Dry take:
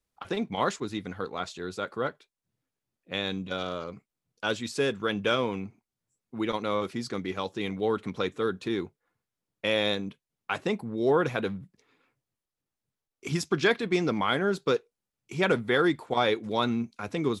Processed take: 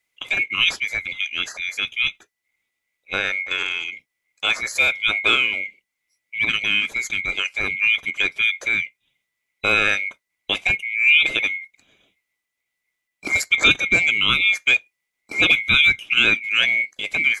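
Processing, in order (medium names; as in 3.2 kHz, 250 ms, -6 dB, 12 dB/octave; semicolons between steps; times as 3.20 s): split-band scrambler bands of 2 kHz; trim +8 dB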